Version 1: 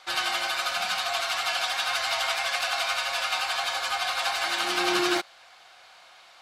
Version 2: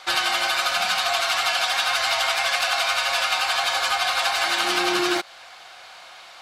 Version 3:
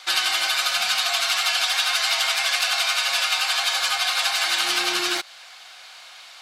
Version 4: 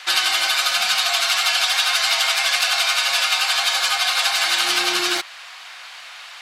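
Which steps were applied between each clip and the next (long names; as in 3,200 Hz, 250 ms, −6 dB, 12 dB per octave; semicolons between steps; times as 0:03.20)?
downward compressor, threshold −27 dBFS, peak gain reduction 7 dB; level +8.5 dB
tilt shelving filter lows −6.5 dB, about 1,400 Hz; level −2.5 dB
noise in a band 940–3,200 Hz −45 dBFS; level +3 dB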